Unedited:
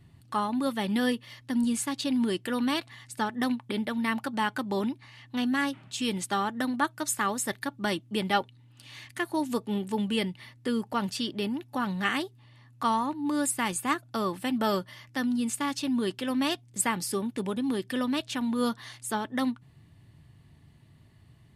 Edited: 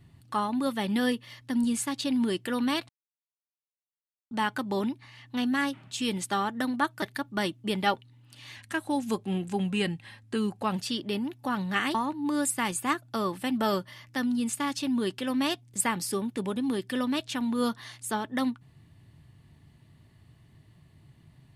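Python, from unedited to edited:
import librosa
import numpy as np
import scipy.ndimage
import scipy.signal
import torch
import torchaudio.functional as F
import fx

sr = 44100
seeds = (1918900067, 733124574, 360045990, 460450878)

y = fx.edit(x, sr, fx.silence(start_s=2.89, length_s=1.42),
    fx.cut(start_s=7.02, length_s=0.47),
    fx.speed_span(start_s=9.03, length_s=2.02, speed=0.92),
    fx.cut(start_s=12.24, length_s=0.71), tone=tone)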